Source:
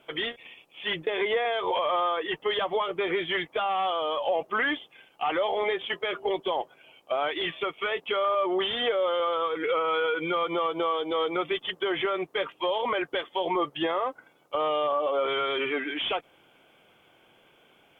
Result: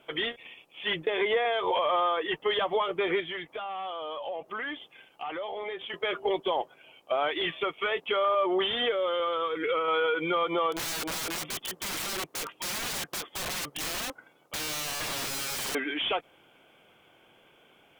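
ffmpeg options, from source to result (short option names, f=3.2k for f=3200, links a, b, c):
-filter_complex "[0:a]asettb=1/sr,asplit=3[a][b][c];[a]atrim=end=3.204[d];[b]atrim=start=3.2:end=5.94,asetpts=PTS-STARTPTS,afade=t=in:d=0.004:c=qsin,afade=t=out:st=2.736:d=0.004:c=qsin,acompressor=threshold=-39dB:ratio=2:attack=3.2:release=140:knee=1:detection=peak[e];[c]atrim=start=5.936[f];[d][e]acrossfade=d=0.004:c1=hsin:c2=qsin[g];[g][f]acrossfade=d=0.004:c1=qsin:c2=hsin,asettb=1/sr,asplit=3[h][i][j];[h]atrim=end=8.854[k];[i]atrim=start=8.85:end=9.88,asetpts=PTS-STARTPTS,afade=t=in:d=0.004:c=qsin,afade=t=out:st=1.026:d=0.004:c=qsin,equalizer=f=780:w=1.5:g=-6[l];[j]atrim=start=9.876[m];[k][l]acrossfade=d=0.004:c1=hsin:c2=qsin[n];[n][m]acrossfade=d=0.004:c1=qsin:c2=hsin,asettb=1/sr,asplit=3[o][p][q];[o]atrim=end=10.724[r];[p]atrim=start=10.72:end=15.75,asetpts=PTS-STARTPTS,afade=t=in:d=0.004:c=qsin,afade=t=out:st=5.026:d=0.004:c=qsin,aeval=exprs='(mod(26.6*val(0)+1,2)-1)/26.6':c=same[s];[q]atrim=start=15.746[t];[r][s]acrossfade=d=0.004:c1=hsin:c2=qsin[u];[u][t]acrossfade=d=0.004:c1=qsin:c2=hsin"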